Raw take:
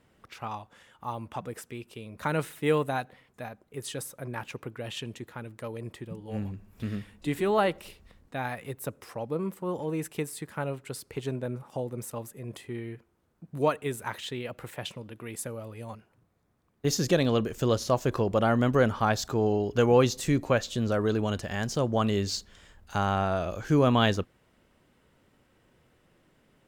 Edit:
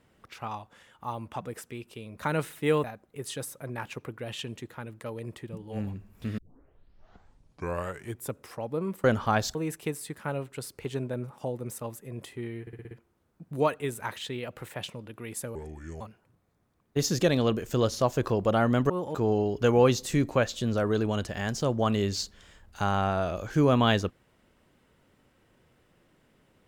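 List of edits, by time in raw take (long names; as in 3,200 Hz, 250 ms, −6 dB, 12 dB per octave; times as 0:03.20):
0:02.84–0:03.42: remove
0:06.96: tape start 2.00 s
0:09.62–0:09.87: swap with 0:18.78–0:19.29
0:12.93: stutter 0.06 s, 6 plays
0:15.57–0:15.89: play speed 70%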